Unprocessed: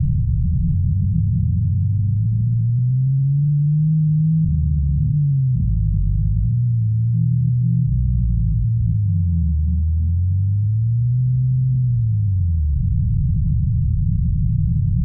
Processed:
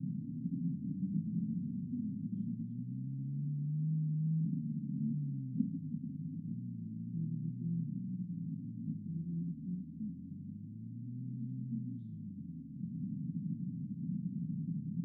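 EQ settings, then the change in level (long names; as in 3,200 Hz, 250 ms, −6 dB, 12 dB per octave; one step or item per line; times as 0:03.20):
formant filter i
four-pole ladder high-pass 200 Hz, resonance 40%
+16.0 dB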